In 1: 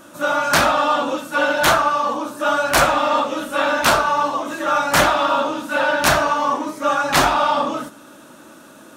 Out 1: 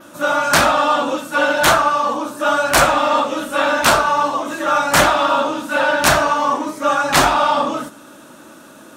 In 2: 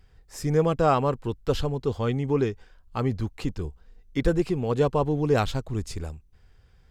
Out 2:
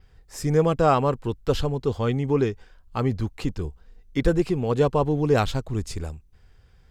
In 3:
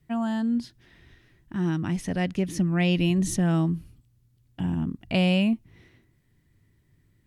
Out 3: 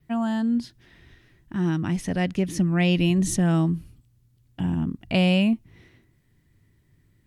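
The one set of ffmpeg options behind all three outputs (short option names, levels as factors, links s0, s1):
-af "adynamicequalizer=threshold=0.00708:dfrequency=8100:dqfactor=2.5:tfrequency=8100:tqfactor=2.5:attack=5:release=100:ratio=0.375:range=1.5:mode=boostabove:tftype=bell,volume=1.26"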